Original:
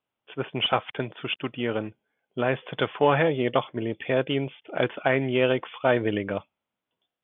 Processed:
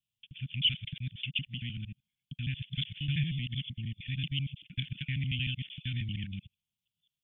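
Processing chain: time reversed locally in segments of 77 ms; inverse Chebyshev band-stop 410–1200 Hz, stop band 60 dB; trim +1 dB

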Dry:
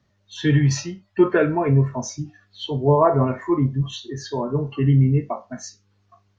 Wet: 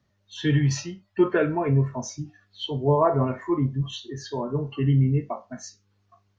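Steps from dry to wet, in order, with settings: dynamic bell 3 kHz, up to +5 dB, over -54 dBFS, Q 6.4; trim -4 dB

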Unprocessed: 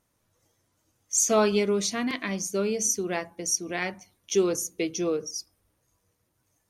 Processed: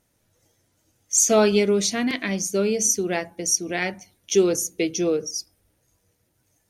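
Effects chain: peaking EQ 1.1 kHz -8.5 dB 0.41 oct; trim +5 dB

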